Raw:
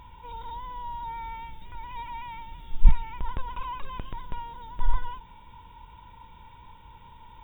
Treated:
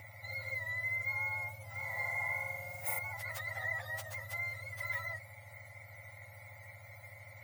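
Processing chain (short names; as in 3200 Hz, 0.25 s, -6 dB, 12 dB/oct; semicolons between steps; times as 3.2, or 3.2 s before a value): spectrum mirrored in octaves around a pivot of 1400 Hz; 1.71–2.99 flutter echo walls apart 7 m, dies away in 0.82 s; gain +2 dB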